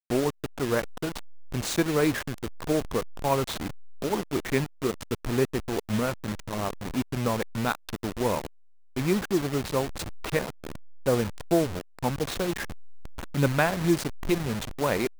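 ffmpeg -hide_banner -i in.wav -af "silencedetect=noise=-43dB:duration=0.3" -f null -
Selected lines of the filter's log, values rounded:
silence_start: 8.47
silence_end: 8.96 | silence_duration: 0.50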